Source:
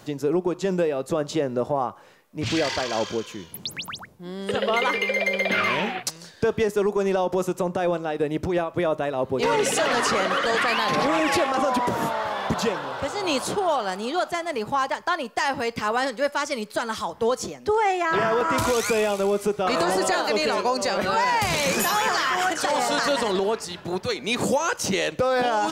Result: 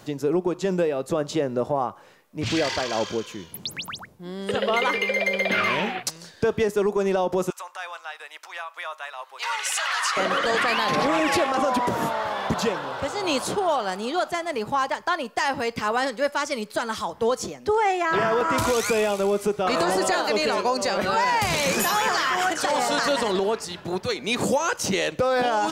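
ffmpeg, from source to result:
-filter_complex "[0:a]asettb=1/sr,asplit=3[a][b][c];[a]atrim=end=7.504[d];[b]atrim=start=7.5:end=10.17,asetpts=PTS-STARTPTS,afade=t=in:d=0.004:c=qsin,afade=t=out:st=2.666:d=0.004:c=qsin,highpass=f=1k:w=0.5412,highpass=f=1k:w=1.3066[e];[c]atrim=start=10.166[f];[d][e]acrossfade=d=0.004:c1=hsin:c2=qsin[g];[g][f]acrossfade=d=0.004:c1=qsin:c2=hsin"

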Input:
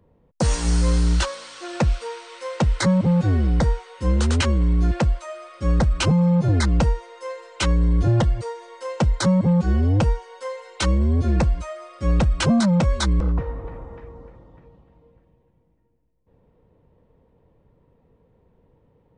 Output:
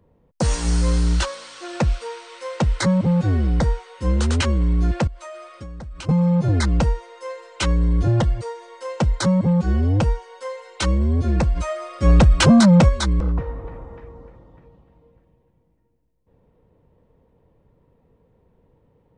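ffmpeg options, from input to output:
-filter_complex "[0:a]asettb=1/sr,asplit=3[a][b][c];[a]atrim=end=5.074[d];[b]atrim=start=5.07:end=6.09,asetpts=PTS-STARTPTS,afade=t=in:d=0.004:c=qsin,afade=t=out:st=1.016:d=0.004:c=qsin,acompressor=threshold=-31dB:ratio=16:attack=3.2:release=140:knee=1:detection=peak[e];[c]atrim=start=6.086[f];[d][e]acrossfade=d=0.004:c1=hsin:c2=qsin[g];[g][f]acrossfade=d=0.004:c1=qsin:c2=hsin,asplit=3[h][i][j];[h]afade=t=out:st=11.55:d=0.02[k];[i]acontrast=76,afade=t=in:st=11.55:d=0.02,afade=t=out:st=12.88:d=0.02[l];[j]afade=t=in:st=12.88:d=0.02[m];[k][l][m]amix=inputs=3:normalize=0"

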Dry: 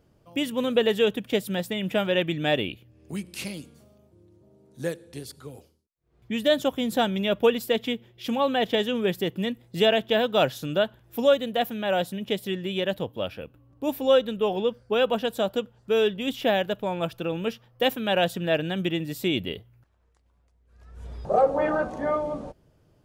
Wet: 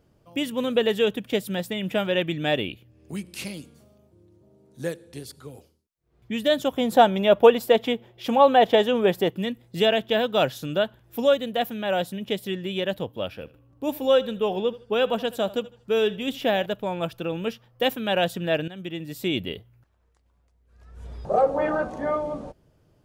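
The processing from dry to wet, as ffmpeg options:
-filter_complex "[0:a]asettb=1/sr,asplit=3[a][b][c];[a]atrim=end=6.764[d];[b]atrim=start=6.76:end=9.31,asetpts=PTS-STARTPTS,afade=t=in:d=0.004:c=qsin,afade=t=out:st=2.546:d=0.004:c=qsin,equalizer=f=750:t=o:w=1.6:g=10.5[e];[c]atrim=start=9.306[f];[d][e]acrossfade=d=0.004:c1=hsin:c2=qsin[g];[g][f]acrossfade=d=0.004:c1=qsin:c2=hsin,asettb=1/sr,asplit=3[h][i][j];[h]atrim=end=13.304[k];[i]atrim=start=13.3:end=16.66,asetpts=PTS-STARTPTS,afade=t=in:d=0.004:c=qsin,afade=t=out:st=3.356:d=0.004:c=qsin,aecho=1:1:77|154|231:0.112|0.0359|0.0115,atrim=end_sample=148176[l];[j]atrim=start=16.656[m];[k][l]acrossfade=d=0.004:c1=hsin:c2=qsin[n];[n][m]acrossfade=d=0.004:c1=qsin:c2=hsin,asplit=2[o][p];[o]atrim=end=18.68,asetpts=PTS-STARTPTS,afade=t=out:st=18.676:d=0.004:c=hsin:silence=0.199526[q];[p]atrim=start=18.68,asetpts=PTS-STARTPTS,afade=t=in:d=0.67:silence=0.199526[r];[q][r]concat=n=2:v=0:a=1"

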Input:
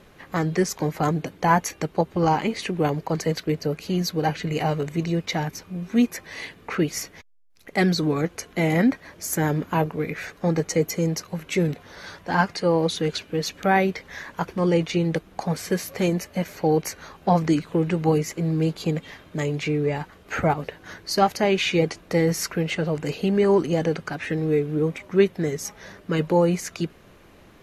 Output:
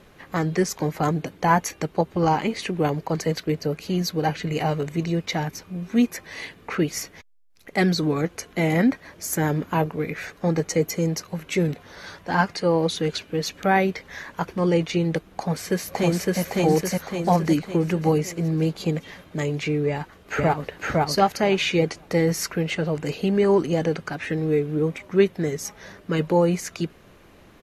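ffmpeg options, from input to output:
-filter_complex "[0:a]asplit=2[a][b];[b]afade=t=in:st=15.29:d=0.01,afade=t=out:st=16.41:d=0.01,aecho=0:1:560|1120|1680|2240|2800|3360|3920:1|0.5|0.25|0.125|0.0625|0.03125|0.015625[c];[a][c]amix=inputs=2:normalize=0,asplit=2[d][e];[e]afade=t=in:st=19.87:d=0.01,afade=t=out:st=20.77:d=0.01,aecho=0:1:510|1020|1530:0.944061|0.141609|0.0212414[f];[d][f]amix=inputs=2:normalize=0"

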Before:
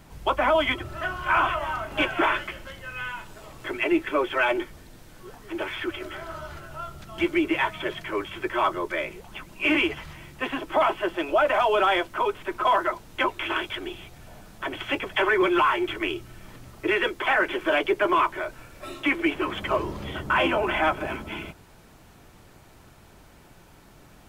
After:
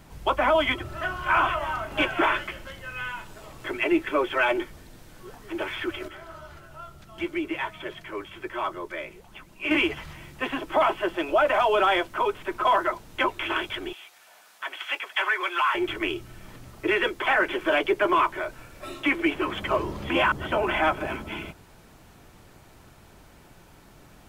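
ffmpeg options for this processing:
-filter_complex "[0:a]asettb=1/sr,asplit=3[a][b][c];[a]atrim=end=13.934[d];[b]atrim=start=13.93:end=15.75,asetpts=PTS-STARTPTS,afade=t=in:d=0.004:c=qsin,afade=t=out:st=1.816:d=0.004:c=qsin,highpass=1k[e];[c]atrim=start=15.746[f];[d][e]acrossfade=d=0.004:c1=hsin:c2=qsin[g];[g][f]acrossfade=d=0.004:c1=qsin:c2=hsin,asplit=5[h][i][j][k][l];[h]atrim=end=6.082[m];[i]atrim=start=6.078:end=9.712,asetpts=PTS-STARTPTS,volume=-6dB[n];[j]atrim=start=9.708:end=20.102[o];[k]atrim=start=20.098:end=20.522,asetpts=PTS-STARTPTS,areverse[p];[l]atrim=start=20.518[q];[m][n]acrossfade=d=0.004:c1=hsin:c2=hsin[r];[r][o]acrossfade=d=0.004:c1=hsin:c2=hsin[s];[s][p]acrossfade=d=0.004:c1=hsin:c2=hsin[t];[t][q]acrossfade=d=0.004:c1=hsin:c2=hsin"

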